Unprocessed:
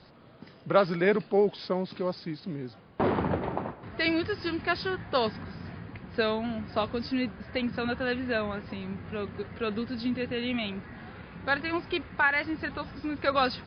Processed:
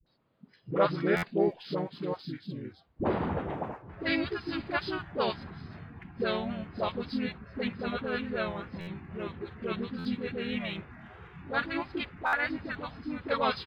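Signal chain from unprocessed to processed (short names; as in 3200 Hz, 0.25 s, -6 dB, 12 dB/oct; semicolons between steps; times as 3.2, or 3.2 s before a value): harmoniser -3 st -2 dB; spectral noise reduction 14 dB; in parallel at -11.5 dB: crossover distortion -48.5 dBFS; on the sum: dispersion highs, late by 65 ms, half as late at 500 Hz; stuck buffer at 1.16/8.8/9.98/12.26, samples 512, times 5; gain -7 dB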